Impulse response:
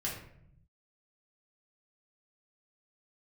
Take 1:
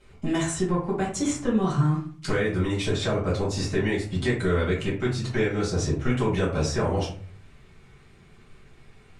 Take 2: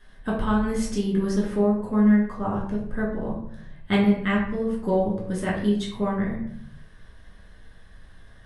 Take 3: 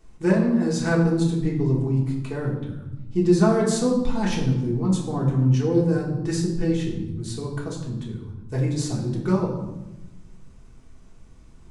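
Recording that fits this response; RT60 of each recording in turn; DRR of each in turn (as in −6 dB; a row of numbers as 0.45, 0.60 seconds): 2; 0.45, 0.70, 1.0 seconds; −8.0, −5.5, −4.0 decibels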